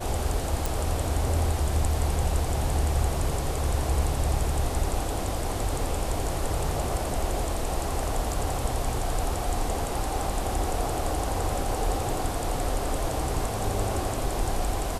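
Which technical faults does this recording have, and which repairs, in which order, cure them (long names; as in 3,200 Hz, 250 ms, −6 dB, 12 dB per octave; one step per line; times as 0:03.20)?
0:00.66: click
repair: click removal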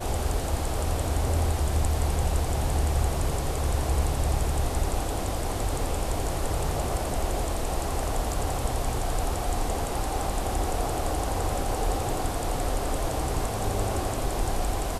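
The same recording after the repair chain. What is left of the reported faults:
none of them is left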